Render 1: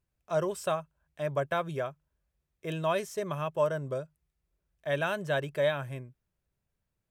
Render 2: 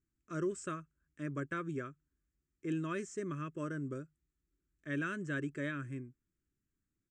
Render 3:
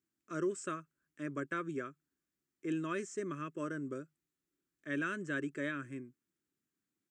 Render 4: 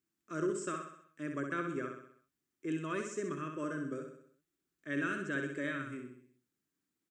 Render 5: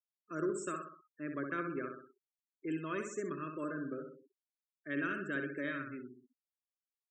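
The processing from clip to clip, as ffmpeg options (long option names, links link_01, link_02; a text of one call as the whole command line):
ffmpeg -i in.wav -af "firequalizer=gain_entry='entry(160,0);entry(300,13);entry(450,-5);entry(790,-28);entry(1200,0);entry(1800,0);entry(3800,-13);entry(7400,5);entry(12000,-30)':delay=0.05:min_phase=1,volume=-5dB" out.wav
ffmpeg -i in.wav -af "highpass=210,volume=1.5dB" out.wav
ffmpeg -i in.wav -af "aecho=1:1:64|128|192|256|320|384:0.531|0.271|0.138|0.0704|0.0359|0.0183" out.wav
ffmpeg -i in.wav -af "afftfilt=real='re*gte(hypot(re,im),0.00398)':imag='im*gte(hypot(re,im),0.00398)':win_size=1024:overlap=0.75,highpass=140,volume=-1dB" out.wav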